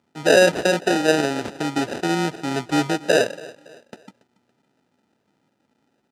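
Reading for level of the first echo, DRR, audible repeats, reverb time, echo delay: -20.5 dB, none, 2, none, 0.281 s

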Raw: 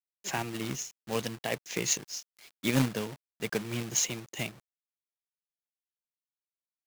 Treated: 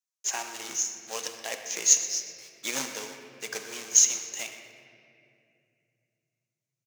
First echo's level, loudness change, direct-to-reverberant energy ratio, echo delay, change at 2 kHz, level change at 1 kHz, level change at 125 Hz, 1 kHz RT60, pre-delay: -15.0 dB, +6.5 dB, 5.0 dB, 0.123 s, 0.0 dB, -1.0 dB, under -20 dB, 2.1 s, 4 ms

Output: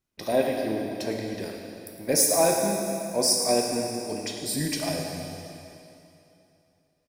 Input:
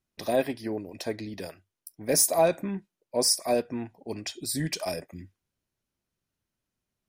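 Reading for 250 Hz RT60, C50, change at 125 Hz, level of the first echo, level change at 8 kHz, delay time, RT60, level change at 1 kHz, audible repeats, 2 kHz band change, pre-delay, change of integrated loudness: 2.9 s, 1.5 dB, +2.0 dB, -11.5 dB, +2.5 dB, 0.109 s, 2.9 s, +3.0 dB, 1, +2.5 dB, 6 ms, +2.0 dB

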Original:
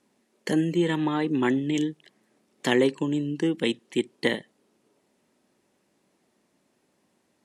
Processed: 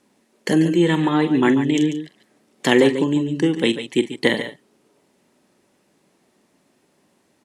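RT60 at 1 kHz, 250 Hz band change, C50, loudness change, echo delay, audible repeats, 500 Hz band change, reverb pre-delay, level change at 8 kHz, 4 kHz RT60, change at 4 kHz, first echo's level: none, +7.0 dB, none, +7.0 dB, 44 ms, 2, +7.0 dB, none, +7.0 dB, none, +7.0 dB, -13.0 dB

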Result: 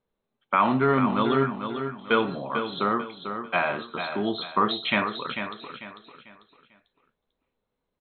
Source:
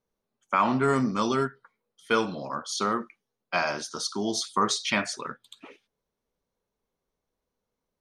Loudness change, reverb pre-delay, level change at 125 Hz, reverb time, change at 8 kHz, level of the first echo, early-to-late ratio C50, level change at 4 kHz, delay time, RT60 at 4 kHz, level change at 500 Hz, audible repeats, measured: +1.5 dB, none, +3.0 dB, none, under -40 dB, -8.0 dB, none, 0.0 dB, 0.445 s, none, +3.0 dB, 3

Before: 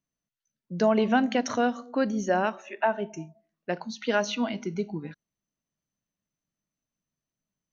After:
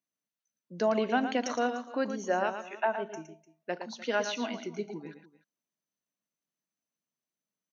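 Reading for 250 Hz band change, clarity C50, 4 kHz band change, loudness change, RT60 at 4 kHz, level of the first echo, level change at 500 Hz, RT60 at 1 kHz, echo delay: -7.0 dB, none, -3.5 dB, -4.5 dB, none, -8.5 dB, -3.5 dB, none, 0.114 s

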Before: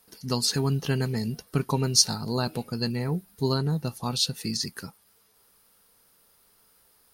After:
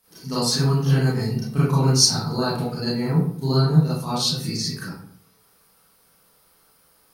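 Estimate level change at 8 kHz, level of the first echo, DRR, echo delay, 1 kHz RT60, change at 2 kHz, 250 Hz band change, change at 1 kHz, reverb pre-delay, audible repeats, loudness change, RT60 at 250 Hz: +3.0 dB, none, -10.5 dB, none, 0.55 s, +4.5 dB, +6.5 dB, +5.5 dB, 29 ms, none, +5.5 dB, 0.75 s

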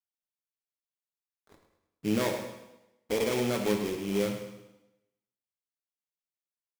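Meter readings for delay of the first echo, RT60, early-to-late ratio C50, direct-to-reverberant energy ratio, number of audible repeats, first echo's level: 0.105 s, 0.95 s, 5.5 dB, 2.5 dB, 3, -11.5 dB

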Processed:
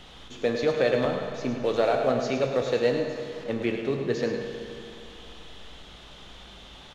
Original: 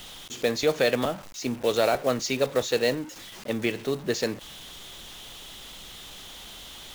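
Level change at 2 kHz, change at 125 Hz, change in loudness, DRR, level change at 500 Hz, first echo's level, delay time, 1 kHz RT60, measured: -2.0 dB, +2.0 dB, -0.5 dB, 2.5 dB, +1.0 dB, -8.5 dB, 0.106 s, 2.7 s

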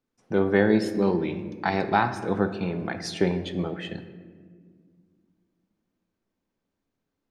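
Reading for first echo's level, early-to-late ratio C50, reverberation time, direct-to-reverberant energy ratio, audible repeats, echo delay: none, 11.0 dB, 1.8 s, 9.0 dB, none, none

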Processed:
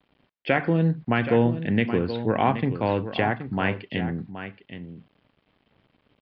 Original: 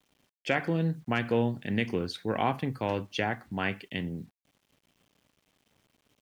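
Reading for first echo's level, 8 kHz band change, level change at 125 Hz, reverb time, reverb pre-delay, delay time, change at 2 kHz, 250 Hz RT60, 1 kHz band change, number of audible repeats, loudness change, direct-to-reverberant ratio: -11.0 dB, under -25 dB, +7.0 dB, none, none, 0.774 s, +4.5 dB, none, +6.0 dB, 1, +6.5 dB, none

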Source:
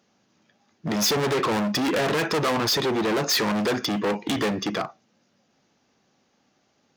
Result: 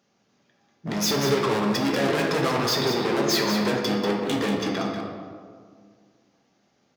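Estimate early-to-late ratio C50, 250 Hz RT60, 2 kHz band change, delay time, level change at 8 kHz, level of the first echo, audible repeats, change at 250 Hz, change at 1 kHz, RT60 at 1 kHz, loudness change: 2.0 dB, 2.3 s, -0.5 dB, 0.19 s, -1.5 dB, -7.0 dB, 1, +1.0 dB, -0.5 dB, 1.8 s, 0.0 dB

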